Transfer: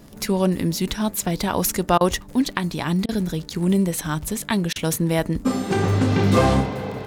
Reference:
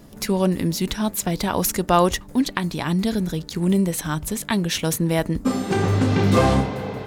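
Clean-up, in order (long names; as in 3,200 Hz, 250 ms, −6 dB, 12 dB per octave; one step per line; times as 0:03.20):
click removal
repair the gap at 0:01.98/0:03.06/0:04.73, 27 ms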